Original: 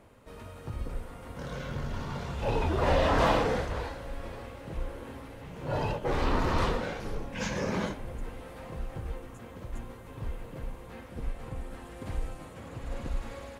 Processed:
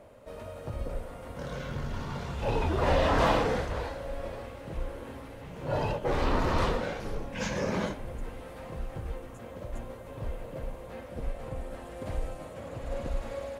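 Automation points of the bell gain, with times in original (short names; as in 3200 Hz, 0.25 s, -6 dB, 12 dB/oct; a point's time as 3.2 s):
bell 590 Hz 0.48 oct
0.93 s +12 dB
1.75 s 0 dB
3.61 s 0 dB
4.2 s +10.5 dB
4.52 s +3 dB
9.09 s +3 dB
9.61 s +10.5 dB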